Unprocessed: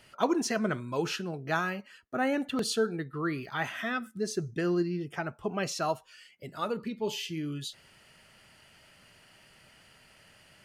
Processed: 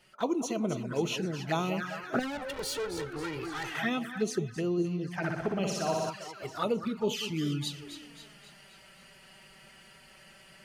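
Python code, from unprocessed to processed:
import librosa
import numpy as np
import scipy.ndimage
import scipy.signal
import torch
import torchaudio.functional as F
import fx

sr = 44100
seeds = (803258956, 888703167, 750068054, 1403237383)

y = fx.echo_split(x, sr, split_hz=1500.0, low_ms=200, high_ms=265, feedback_pct=52, wet_db=-10.5)
y = fx.tube_stage(y, sr, drive_db=37.0, bias=0.3, at=(2.19, 3.75))
y = fx.env_flanger(y, sr, rest_ms=6.0, full_db=-28.0)
y = fx.room_flutter(y, sr, wall_m=10.4, rt60_s=1.1, at=(5.21, 6.09), fade=0.02)
y = fx.rider(y, sr, range_db=5, speed_s=0.5)
y = F.gain(torch.from_numpy(y), 2.5).numpy()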